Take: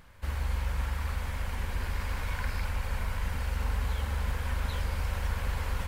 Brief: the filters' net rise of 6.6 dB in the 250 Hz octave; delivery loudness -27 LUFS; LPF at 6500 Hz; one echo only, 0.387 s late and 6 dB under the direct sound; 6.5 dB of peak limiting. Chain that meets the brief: LPF 6500 Hz; bell 250 Hz +8.5 dB; limiter -25.5 dBFS; echo 0.387 s -6 dB; gain +8 dB

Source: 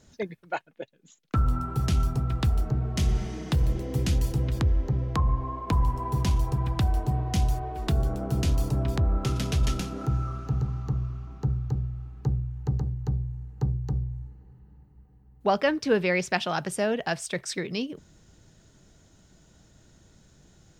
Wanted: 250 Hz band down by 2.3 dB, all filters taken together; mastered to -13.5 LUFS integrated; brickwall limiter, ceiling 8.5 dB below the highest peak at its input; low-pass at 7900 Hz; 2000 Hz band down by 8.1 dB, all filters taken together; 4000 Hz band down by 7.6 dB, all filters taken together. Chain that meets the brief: LPF 7900 Hz; bell 250 Hz -3.5 dB; bell 2000 Hz -8.5 dB; bell 4000 Hz -7 dB; gain +18.5 dB; limiter -3.5 dBFS

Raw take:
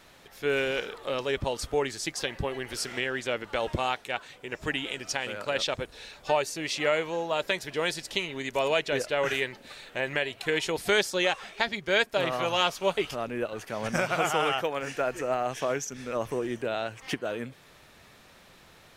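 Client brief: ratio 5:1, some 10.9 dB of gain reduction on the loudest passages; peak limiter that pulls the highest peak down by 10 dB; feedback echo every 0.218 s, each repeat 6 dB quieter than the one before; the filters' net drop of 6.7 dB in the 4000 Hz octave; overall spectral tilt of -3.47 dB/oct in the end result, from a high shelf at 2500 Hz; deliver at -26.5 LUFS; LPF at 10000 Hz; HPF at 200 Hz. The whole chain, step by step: HPF 200 Hz; LPF 10000 Hz; high shelf 2500 Hz -6 dB; bell 4000 Hz -4 dB; compressor 5:1, threshold -34 dBFS; limiter -28 dBFS; feedback echo 0.218 s, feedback 50%, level -6 dB; gain +12.5 dB

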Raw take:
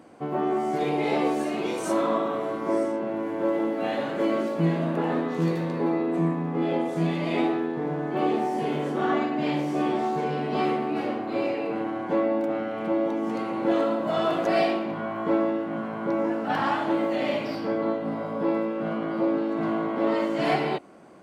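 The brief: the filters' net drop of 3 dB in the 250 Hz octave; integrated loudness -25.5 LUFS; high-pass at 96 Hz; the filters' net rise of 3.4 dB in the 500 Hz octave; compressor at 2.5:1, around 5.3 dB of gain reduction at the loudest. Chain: HPF 96 Hz; bell 250 Hz -8 dB; bell 500 Hz +6.5 dB; compressor 2.5:1, threshold -25 dBFS; gain +3 dB

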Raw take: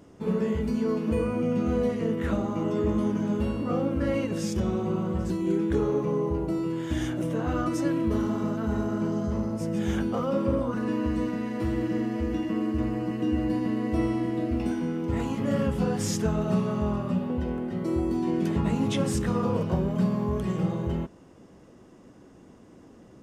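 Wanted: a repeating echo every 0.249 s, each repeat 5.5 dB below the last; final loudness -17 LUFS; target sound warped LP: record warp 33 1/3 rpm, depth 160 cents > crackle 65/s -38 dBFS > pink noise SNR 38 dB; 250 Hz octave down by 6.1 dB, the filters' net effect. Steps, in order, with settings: bell 250 Hz -8.5 dB; feedback echo 0.249 s, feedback 53%, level -5.5 dB; record warp 33 1/3 rpm, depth 160 cents; crackle 65/s -38 dBFS; pink noise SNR 38 dB; gain +13 dB

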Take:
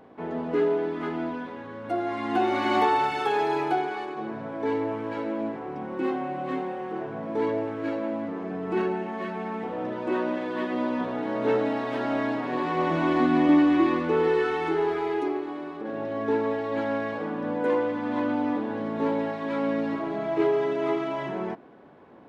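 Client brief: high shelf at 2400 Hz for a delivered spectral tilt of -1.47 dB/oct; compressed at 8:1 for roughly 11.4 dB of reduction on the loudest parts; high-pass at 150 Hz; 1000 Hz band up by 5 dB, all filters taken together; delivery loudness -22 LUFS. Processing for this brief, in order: HPF 150 Hz; bell 1000 Hz +7 dB; high shelf 2400 Hz -4.5 dB; compressor 8:1, threshold -26 dBFS; gain +8.5 dB

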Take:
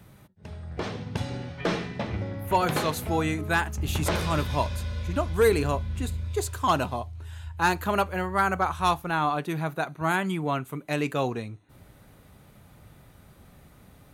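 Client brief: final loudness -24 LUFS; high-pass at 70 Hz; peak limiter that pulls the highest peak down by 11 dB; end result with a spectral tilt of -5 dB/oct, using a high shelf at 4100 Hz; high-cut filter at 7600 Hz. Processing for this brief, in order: HPF 70 Hz; LPF 7600 Hz; high shelf 4100 Hz +6 dB; gain +8 dB; limiter -12.5 dBFS

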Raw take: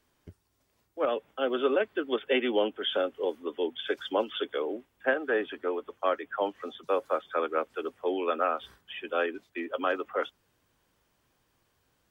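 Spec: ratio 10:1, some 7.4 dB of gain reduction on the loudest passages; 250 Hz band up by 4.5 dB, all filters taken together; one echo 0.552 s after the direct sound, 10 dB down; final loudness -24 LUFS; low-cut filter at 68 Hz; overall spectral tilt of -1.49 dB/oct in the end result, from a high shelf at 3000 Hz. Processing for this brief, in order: HPF 68 Hz; bell 250 Hz +6 dB; high shelf 3000 Hz -5.5 dB; compressor 10:1, threshold -27 dBFS; echo 0.552 s -10 dB; gain +10 dB

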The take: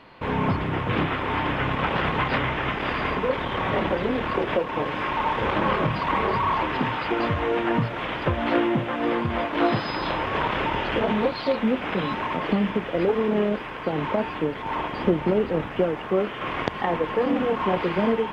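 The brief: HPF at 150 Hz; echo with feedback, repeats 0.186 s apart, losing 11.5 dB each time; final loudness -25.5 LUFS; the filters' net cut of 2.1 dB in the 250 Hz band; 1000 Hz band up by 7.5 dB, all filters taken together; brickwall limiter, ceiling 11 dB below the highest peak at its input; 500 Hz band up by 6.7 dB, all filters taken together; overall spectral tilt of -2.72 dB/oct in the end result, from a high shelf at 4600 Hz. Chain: HPF 150 Hz; bell 250 Hz -6 dB; bell 500 Hz +8 dB; bell 1000 Hz +6.5 dB; high shelf 4600 Hz +8 dB; limiter -10.5 dBFS; feedback echo 0.186 s, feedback 27%, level -11.5 dB; gain -5 dB

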